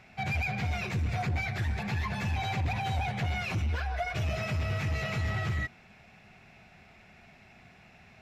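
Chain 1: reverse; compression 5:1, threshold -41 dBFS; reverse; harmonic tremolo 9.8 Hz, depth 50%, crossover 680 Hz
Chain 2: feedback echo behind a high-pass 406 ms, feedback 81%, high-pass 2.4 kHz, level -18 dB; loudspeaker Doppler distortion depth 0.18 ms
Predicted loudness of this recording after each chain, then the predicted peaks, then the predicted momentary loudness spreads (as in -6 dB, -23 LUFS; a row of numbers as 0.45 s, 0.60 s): -44.5 LUFS, -32.0 LUFS; -33.0 dBFS, -24.5 dBFS; 13 LU, 2 LU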